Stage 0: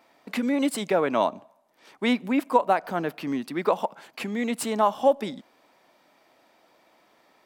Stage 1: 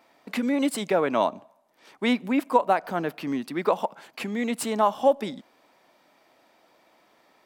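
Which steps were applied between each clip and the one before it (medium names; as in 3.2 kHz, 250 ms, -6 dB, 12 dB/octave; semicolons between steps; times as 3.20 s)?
no audible change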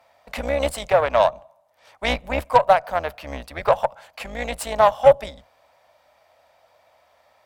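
octave divider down 2 oct, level +2 dB; Chebyshev shaper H 6 -22 dB, 7 -27 dB, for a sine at -6 dBFS; resonant low shelf 450 Hz -8.5 dB, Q 3; trim +3 dB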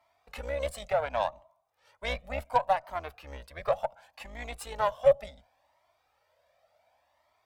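Shepard-style flanger rising 0.69 Hz; trim -7 dB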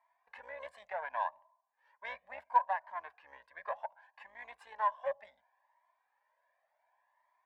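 two resonant band-passes 1.3 kHz, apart 0.71 oct; trim +1.5 dB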